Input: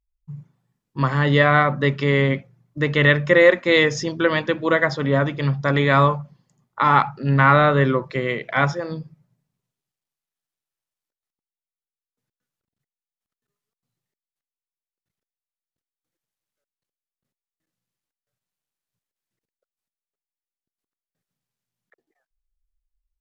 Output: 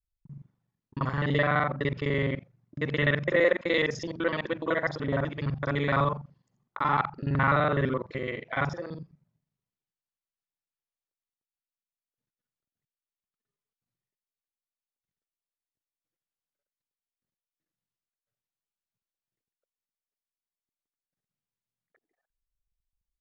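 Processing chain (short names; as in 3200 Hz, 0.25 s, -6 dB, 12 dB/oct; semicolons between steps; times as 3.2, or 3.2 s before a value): local time reversal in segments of 42 ms; air absorption 59 m; gain -8.5 dB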